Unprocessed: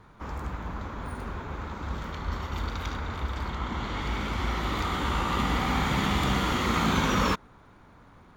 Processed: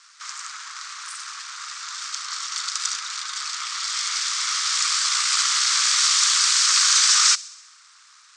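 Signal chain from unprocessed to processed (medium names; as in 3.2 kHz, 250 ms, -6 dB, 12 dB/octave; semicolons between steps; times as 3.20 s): full-wave rectifier; Chebyshev band-pass 1.2–8.4 kHz, order 4; resonant high shelf 3.8 kHz +13.5 dB, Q 1.5; on a send: feedback echo behind a high-pass 65 ms, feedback 64%, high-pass 3.2 kHz, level -20 dB; on the sum: trim +9 dB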